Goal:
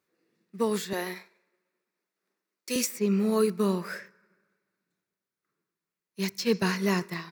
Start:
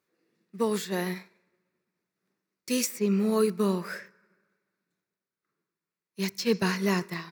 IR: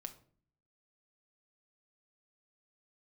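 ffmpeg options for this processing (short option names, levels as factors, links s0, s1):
-filter_complex "[0:a]asettb=1/sr,asplit=3[s0][s1][s2];[s0]atrim=end=0.934[s3];[s1]atrim=start=0.93:end=2.76,asetpts=PTS-STARTPTS,afade=t=in:d=0.004:c=qsin,afade=t=out:st=1.826:d=0.004:c=qsin,highpass=330[s4];[s2]atrim=start=2.756[s5];[s3][s4]acrossfade=d=0.004:c1=hsin:c2=qsin[s6];[s6][s5]acrossfade=d=0.004:c1=qsin:c2=hsin"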